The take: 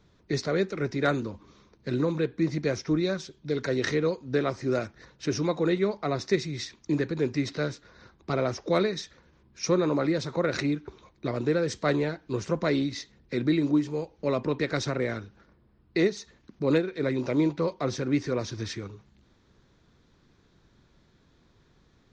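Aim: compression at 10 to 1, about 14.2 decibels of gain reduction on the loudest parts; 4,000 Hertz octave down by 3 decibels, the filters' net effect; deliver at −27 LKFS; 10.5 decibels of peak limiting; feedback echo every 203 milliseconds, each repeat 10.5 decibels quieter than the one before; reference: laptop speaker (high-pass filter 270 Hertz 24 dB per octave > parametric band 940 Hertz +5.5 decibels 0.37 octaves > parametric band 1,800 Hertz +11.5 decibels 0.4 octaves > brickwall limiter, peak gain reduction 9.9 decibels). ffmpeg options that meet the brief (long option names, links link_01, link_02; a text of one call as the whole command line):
ffmpeg -i in.wav -af "equalizer=frequency=4000:width_type=o:gain=-4,acompressor=threshold=-34dB:ratio=10,alimiter=level_in=8dB:limit=-24dB:level=0:latency=1,volume=-8dB,highpass=frequency=270:width=0.5412,highpass=frequency=270:width=1.3066,equalizer=frequency=940:width_type=o:width=0.37:gain=5.5,equalizer=frequency=1800:width_type=o:width=0.4:gain=11.5,aecho=1:1:203|406|609:0.299|0.0896|0.0269,volume=17.5dB,alimiter=limit=-17.5dB:level=0:latency=1" out.wav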